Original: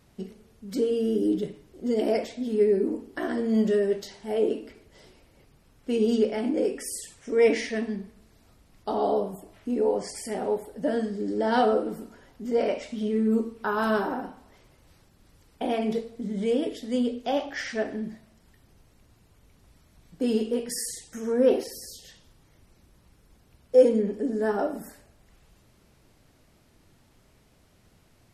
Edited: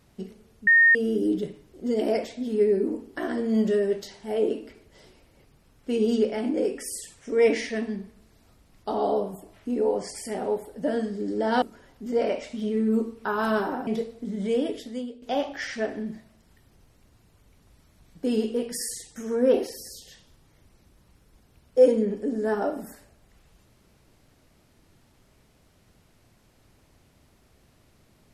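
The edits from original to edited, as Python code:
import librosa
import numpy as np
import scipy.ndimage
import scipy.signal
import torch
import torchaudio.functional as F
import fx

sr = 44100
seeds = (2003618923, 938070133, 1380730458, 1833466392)

y = fx.edit(x, sr, fx.bleep(start_s=0.67, length_s=0.28, hz=1840.0, db=-13.0),
    fx.cut(start_s=11.62, length_s=0.39),
    fx.cut(start_s=14.26, length_s=1.58),
    fx.fade_out_to(start_s=16.8, length_s=0.39, curve='qua', floor_db=-15.0), tone=tone)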